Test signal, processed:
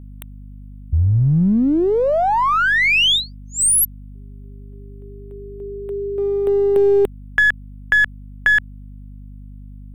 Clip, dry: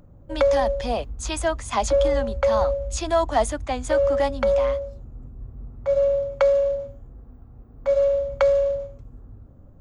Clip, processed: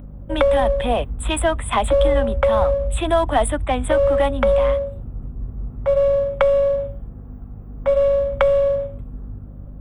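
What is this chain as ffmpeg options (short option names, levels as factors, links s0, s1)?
-filter_complex "[0:a]asuperstop=centerf=5500:order=12:qfactor=1.3,asplit=2[s0][s1];[s1]aeval=exprs='clip(val(0),-1,0.0355)':c=same,volume=0.355[s2];[s0][s2]amix=inputs=2:normalize=0,acrossover=split=180|3000[s3][s4][s5];[s4]acompressor=threshold=0.1:ratio=2.5[s6];[s3][s6][s5]amix=inputs=3:normalize=0,aeval=exprs='val(0)+0.01*(sin(2*PI*50*n/s)+sin(2*PI*2*50*n/s)/2+sin(2*PI*3*50*n/s)/3+sin(2*PI*4*50*n/s)/4+sin(2*PI*5*50*n/s)/5)':c=same,volume=1.68"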